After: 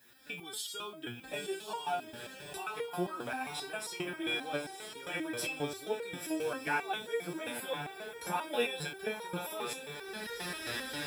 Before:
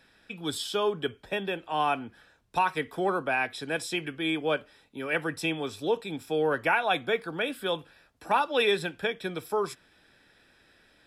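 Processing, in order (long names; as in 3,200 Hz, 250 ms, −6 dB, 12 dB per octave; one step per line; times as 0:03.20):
camcorder AGC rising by 44 dB per second
high-pass filter 51 Hz
high-shelf EQ 7,500 Hz +10.5 dB
in parallel at −2.5 dB: downward compressor, threshold −33 dBFS, peak gain reduction 12.5 dB
on the sum: background noise violet −54 dBFS
on a send: feedback delay with all-pass diffusion 984 ms, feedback 45%, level −7 dB
on the sum: step-sequenced resonator 7.5 Hz 120–470 Hz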